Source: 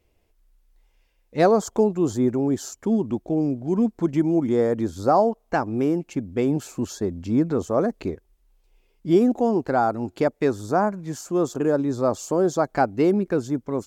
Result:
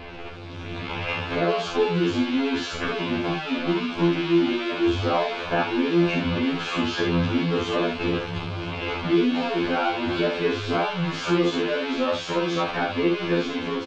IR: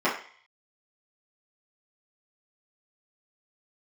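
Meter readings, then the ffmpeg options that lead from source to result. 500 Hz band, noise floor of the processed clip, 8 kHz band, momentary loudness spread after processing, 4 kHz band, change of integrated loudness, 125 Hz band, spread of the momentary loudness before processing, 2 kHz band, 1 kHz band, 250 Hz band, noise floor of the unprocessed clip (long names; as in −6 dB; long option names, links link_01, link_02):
−2.5 dB, −34 dBFS, can't be measured, 7 LU, +15.0 dB, −1.5 dB, +0.5 dB, 8 LU, +8.5 dB, −1.5 dB, −1.5 dB, −66 dBFS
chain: -filter_complex "[0:a]aeval=exprs='val(0)+0.5*0.0891*sgn(val(0))':channel_layout=same,lowpass=frequency=3400:width=0.5412,lowpass=frequency=3400:width=1.3066,lowshelf=frequency=160:gain=-10.5,bandreject=frequency=1900:width=6.6,acrossover=split=2000[link_01][link_02];[link_01]acompressor=threshold=-33dB:ratio=4[link_03];[link_02]alimiter=level_in=11dB:limit=-24dB:level=0:latency=1,volume=-11dB[link_04];[link_03][link_04]amix=inputs=2:normalize=0,dynaudnorm=framelen=210:gausssize=5:maxgain=12.5dB,equalizer=frequency=690:width_type=o:width=0.77:gain=-2.5,aecho=1:1:41|70:0.596|0.531,afftfilt=real='re*2*eq(mod(b,4),0)':imag='im*2*eq(mod(b,4),0)':win_size=2048:overlap=0.75,volume=-2dB"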